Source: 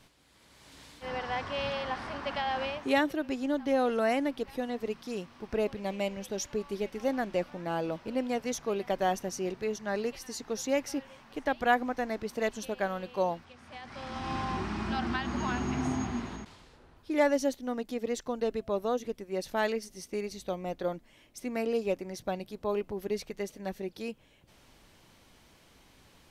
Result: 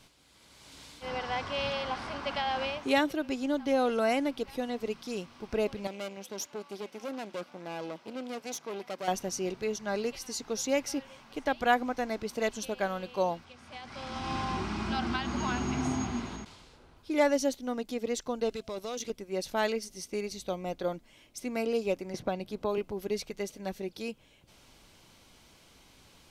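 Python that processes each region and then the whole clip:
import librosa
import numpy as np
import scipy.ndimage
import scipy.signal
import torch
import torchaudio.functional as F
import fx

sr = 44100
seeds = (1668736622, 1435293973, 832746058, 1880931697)

y = fx.chain(x, sr, fx.tube_stage(drive_db=33.0, bias=0.8),
    fx.highpass(hz=200.0, slope=12), at=(5.87, 9.08))
y = fx.chain(y, sr, fx.level_steps(step_db=9),
    fx.peak_eq(hz=5300.0, db=11.5, octaves=2.7),
    fx.overload_stage(gain_db=31.5), at=(18.49, 19.1))
y = fx.chain(y, sr, fx.high_shelf(hz=3800.0, db=-6.0),
    fx.band_squash(depth_pct=70), at=(22.14, 22.78))
y = fx.peak_eq(y, sr, hz=5700.0, db=4.0, octaves=2.3)
y = fx.notch(y, sr, hz=1800.0, q=11.0)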